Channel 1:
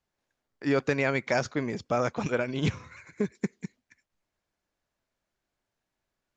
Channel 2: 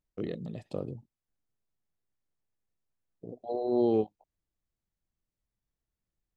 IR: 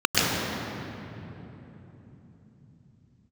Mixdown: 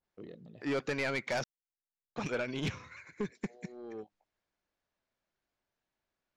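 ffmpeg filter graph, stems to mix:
-filter_complex "[0:a]adynamicequalizer=threshold=0.00891:dfrequency=1700:dqfactor=0.7:tfrequency=1700:tqfactor=0.7:attack=5:release=100:ratio=0.375:range=2:mode=boostabove:tftype=highshelf,volume=-3dB,asplit=3[a][b][c];[a]atrim=end=1.44,asetpts=PTS-STARTPTS,afade=t=out:st=1.436:d=0.004:c=hsin[d];[b]atrim=start=1.44:end=2.16,asetpts=PTS-STARTPTS,volume=0[e];[c]atrim=start=2.16,asetpts=PTS-STARTPTS,afade=t=in:d=0.004:c=hsin[f];[d][e][f]concat=n=3:v=0:a=1,asplit=2[g][h];[1:a]asoftclip=type=tanh:threshold=-20dB,volume=-11dB[i];[h]apad=whole_len=280779[j];[i][j]sidechaincompress=threshold=-41dB:ratio=8:attack=16:release=602[k];[g][k]amix=inputs=2:normalize=0,lowpass=5.7k,lowshelf=f=190:g=-5,asoftclip=type=tanh:threshold=-27dB"

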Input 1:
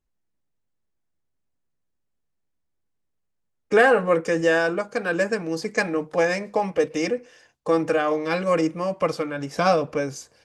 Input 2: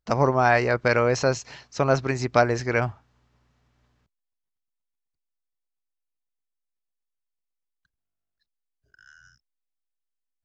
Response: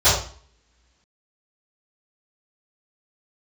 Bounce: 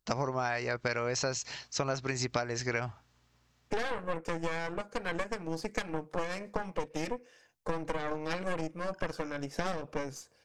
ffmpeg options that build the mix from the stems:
-filter_complex "[0:a]aeval=exprs='0.841*(cos(1*acos(clip(val(0)/0.841,-1,1)))-cos(1*PI/2))+0.188*(cos(8*acos(clip(val(0)/0.841,-1,1)))-cos(8*PI/2))':c=same,volume=-8.5dB[a];[1:a]highshelf=f=2.5k:g=10.5,volume=-4dB[b];[a][b]amix=inputs=2:normalize=0,acompressor=threshold=-28dB:ratio=12"

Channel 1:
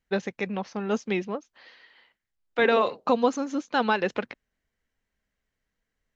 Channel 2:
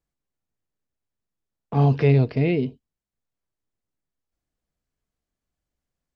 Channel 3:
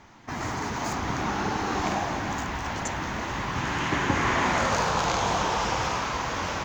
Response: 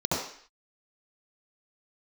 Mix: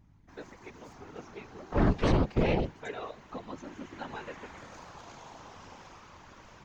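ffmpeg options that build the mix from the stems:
-filter_complex "[0:a]aecho=1:1:7.3:0.82,adelay=250,volume=-14.5dB[a];[1:a]aeval=exprs='0.501*(cos(1*acos(clip(val(0)/0.501,-1,1)))-cos(1*PI/2))+0.224*(cos(6*acos(clip(val(0)/0.501,-1,1)))-cos(6*PI/2))':c=same,volume=-5.5dB[b];[2:a]equalizer=f=300:t=o:w=0.2:g=8.5,aeval=exprs='val(0)+0.0178*(sin(2*PI*50*n/s)+sin(2*PI*2*50*n/s)/2+sin(2*PI*3*50*n/s)/3+sin(2*PI*4*50*n/s)/4+sin(2*PI*5*50*n/s)/5)':c=same,volume=-18dB[c];[a][b][c]amix=inputs=3:normalize=0,afftfilt=real='hypot(re,im)*cos(2*PI*random(0))':imag='hypot(re,im)*sin(2*PI*random(1))':win_size=512:overlap=0.75"

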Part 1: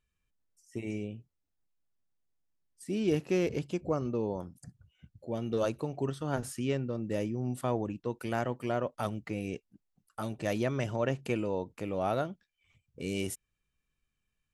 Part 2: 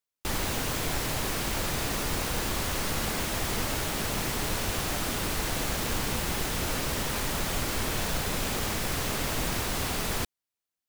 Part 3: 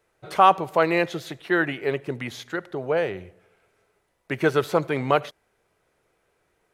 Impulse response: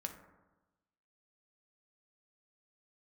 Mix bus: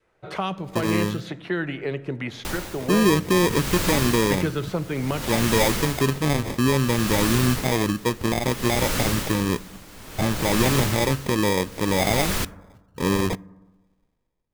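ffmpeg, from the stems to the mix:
-filter_complex "[0:a]alimiter=limit=-23dB:level=0:latency=1:release=90,dynaudnorm=f=130:g=9:m=12dB,acrusher=samples=31:mix=1:aa=0.000001,volume=0dB,asplit=2[a][b];[b]volume=-12.5dB[c];[1:a]aeval=exprs='val(0)*pow(10,-21*(0.5-0.5*cos(2*PI*0.59*n/s))/20)':c=same,adelay=2200,volume=2.5dB,asplit=2[d][e];[e]volume=-4dB[f];[2:a]aemphasis=mode=reproduction:type=50fm,acrossover=split=260|3000[g][h][i];[h]acompressor=threshold=-31dB:ratio=6[j];[g][j][i]amix=inputs=3:normalize=0,volume=-0.5dB,asplit=2[k][l];[l]volume=-4dB[m];[3:a]atrim=start_sample=2205[n];[c][f][m]amix=inputs=3:normalize=0[o];[o][n]afir=irnorm=-1:irlink=0[p];[a][d][k][p]amix=inputs=4:normalize=0,adynamicequalizer=threshold=0.0141:dfrequency=720:dqfactor=1.9:tfrequency=720:tqfactor=1.9:attack=5:release=100:ratio=0.375:range=3:mode=cutabove:tftype=bell"

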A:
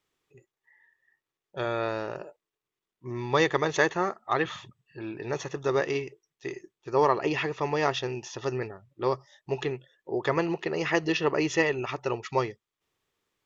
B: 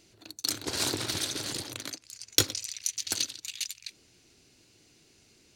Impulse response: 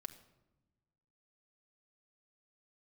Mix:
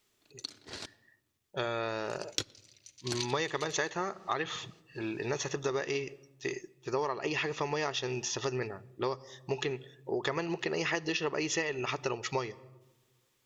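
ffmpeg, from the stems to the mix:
-filter_complex "[0:a]highshelf=f=3.2k:g=10,volume=-2dB,asplit=3[a][b][c];[b]volume=-4dB[d];[1:a]lowpass=5.5k,volume=-2.5dB,asplit=3[e][f][g];[e]atrim=end=0.86,asetpts=PTS-STARTPTS,afade=t=out:st=0.856:d=0.004:c=hsin[h];[f]atrim=start=0.86:end=2.04,asetpts=PTS-STARTPTS,volume=0[i];[g]atrim=start=2.04,asetpts=PTS-STARTPTS,afade=t=in:d=0.004:c=hsin[j];[h][i][j]concat=n=3:v=0:a=1,asplit=2[k][l];[l]volume=-13dB[m];[c]apad=whole_len=245034[n];[k][n]sidechaingate=range=-33dB:threshold=-59dB:ratio=16:detection=peak[o];[2:a]atrim=start_sample=2205[p];[d][m]amix=inputs=2:normalize=0[q];[q][p]afir=irnorm=-1:irlink=0[r];[a][o][r]amix=inputs=3:normalize=0,acompressor=threshold=-29dB:ratio=6"

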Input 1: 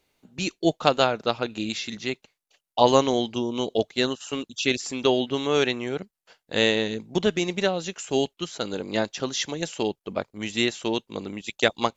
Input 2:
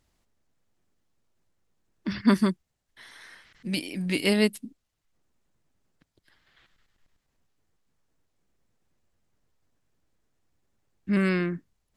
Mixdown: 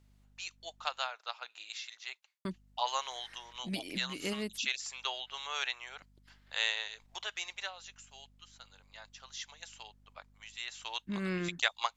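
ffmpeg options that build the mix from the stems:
-filter_complex "[0:a]highpass=f=870:w=0.5412,highpass=f=870:w=1.3066,dynaudnorm=f=250:g=21:m=5dB,volume=7dB,afade=t=out:st=7.36:d=0.71:silence=0.251189,afade=t=in:st=8.96:d=0.62:silence=0.398107,afade=t=in:st=10.63:d=0.32:silence=0.298538,asplit=2[a][b];[1:a]acompressor=threshold=-27dB:ratio=6,aeval=exprs='val(0)+0.00112*(sin(2*PI*50*n/s)+sin(2*PI*2*50*n/s)/2+sin(2*PI*3*50*n/s)/3+sin(2*PI*4*50*n/s)/4+sin(2*PI*5*50*n/s)/5)':c=same,volume=-4dB,asplit=3[c][d][e];[c]atrim=end=1.07,asetpts=PTS-STARTPTS,afade=t=out:st=1.066:d=0.004:c=hsin[f];[d]atrim=start=1.07:end=2.45,asetpts=PTS-STARTPTS,volume=0[g];[e]atrim=start=2.45,asetpts=PTS-STARTPTS,afade=t=in:d=0.004:c=hsin[h];[f][g][h]concat=n=3:v=0:a=1[i];[b]apad=whole_len=527592[j];[i][j]sidechaincompress=threshold=-43dB:ratio=8:attack=16:release=257[k];[a][k]amix=inputs=2:normalize=0"

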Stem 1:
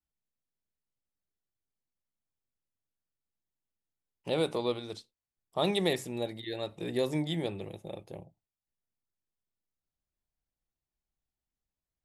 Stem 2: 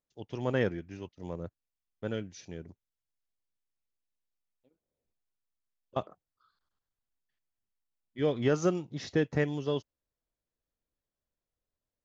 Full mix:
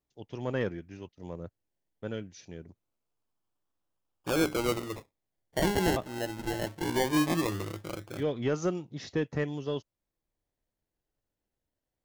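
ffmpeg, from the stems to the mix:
-filter_complex "[0:a]equalizer=f=100:t=o:w=0.33:g=8,equalizer=f=315:t=o:w=0.33:g=9,equalizer=f=3.15k:t=o:w=0.33:g=11,acrusher=samples=29:mix=1:aa=0.000001:lfo=1:lforange=17.4:lforate=0.2,volume=1dB[a];[1:a]volume=-1.5dB,asplit=2[b][c];[c]apad=whole_len=531322[d];[a][d]sidechaincompress=threshold=-34dB:ratio=5:attack=21:release=836[e];[e][b]amix=inputs=2:normalize=0,asoftclip=type=tanh:threshold=-17.5dB"

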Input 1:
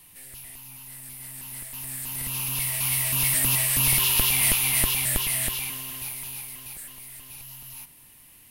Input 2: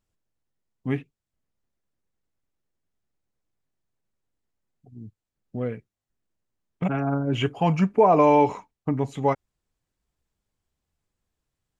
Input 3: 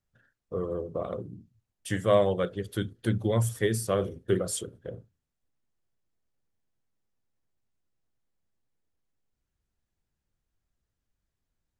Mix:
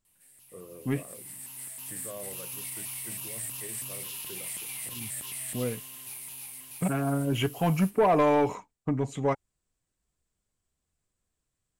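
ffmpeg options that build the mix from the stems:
-filter_complex "[0:a]dynaudnorm=f=250:g=7:m=12dB,flanger=delay=5.6:depth=6.8:regen=75:speed=0.22:shape=triangular,adelay=50,volume=-14dB[a];[1:a]bandreject=f=850:w=12,asoftclip=type=tanh:threshold=-14dB,volume=-2dB[b];[2:a]volume=-14.5dB[c];[a][c]amix=inputs=2:normalize=0,highpass=130,alimiter=level_in=6.5dB:limit=-24dB:level=0:latency=1:release=36,volume=-6.5dB,volume=0dB[d];[b][d]amix=inputs=2:normalize=0,equalizer=f=8.1k:w=2.3:g=9.5"

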